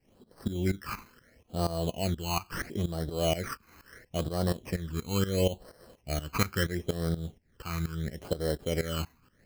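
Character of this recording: tremolo saw up 4.2 Hz, depth 85%; aliases and images of a low sample rate 3.6 kHz, jitter 0%; phasing stages 12, 0.74 Hz, lowest notch 560–2400 Hz

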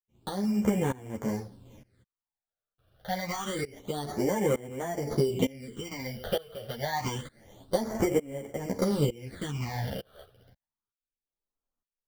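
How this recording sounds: aliases and images of a low sample rate 2.6 kHz, jitter 0%; phasing stages 8, 0.27 Hz, lowest notch 270–4500 Hz; tremolo saw up 1.1 Hz, depth 95%; a shimmering, thickened sound

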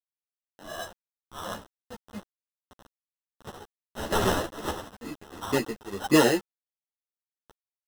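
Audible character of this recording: aliases and images of a low sample rate 2.3 kHz, jitter 0%; tremolo triangle 1.5 Hz, depth 100%; a quantiser's noise floor 8-bit, dither none; a shimmering, thickened sound

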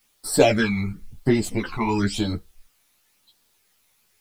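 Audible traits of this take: phasing stages 12, 0.96 Hz, lowest notch 500–2400 Hz; a quantiser's noise floor 12-bit, dither triangular; a shimmering, thickened sound

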